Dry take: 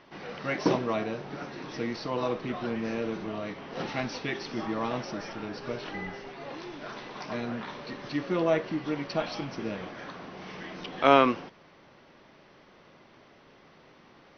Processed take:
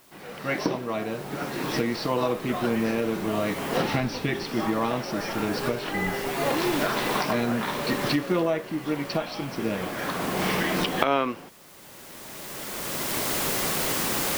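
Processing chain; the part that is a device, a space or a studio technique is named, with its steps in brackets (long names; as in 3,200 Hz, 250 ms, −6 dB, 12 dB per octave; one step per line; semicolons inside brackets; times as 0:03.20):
0:03.92–0:04.45: low-shelf EQ 210 Hz +10 dB
cheap recorder with automatic gain (white noise bed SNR 22 dB; camcorder AGC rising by 15 dB per second)
level −4.5 dB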